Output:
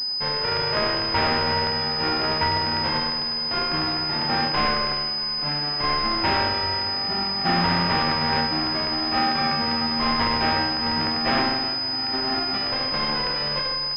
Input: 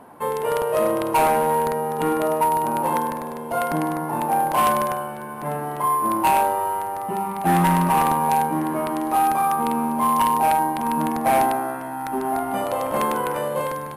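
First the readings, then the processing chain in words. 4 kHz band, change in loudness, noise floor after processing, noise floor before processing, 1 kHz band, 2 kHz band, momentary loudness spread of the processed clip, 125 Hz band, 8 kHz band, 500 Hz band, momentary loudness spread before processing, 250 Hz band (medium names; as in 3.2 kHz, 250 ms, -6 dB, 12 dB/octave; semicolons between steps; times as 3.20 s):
+19.0 dB, 0.0 dB, -27 dBFS, -32 dBFS, -6.0 dB, +5.0 dB, 3 LU, -1.0 dB, under -20 dB, -6.0 dB, 8 LU, -3.0 dB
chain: formants flattened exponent 0.3; class-D stage that switches slowly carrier 5 kHz; trim -3 dB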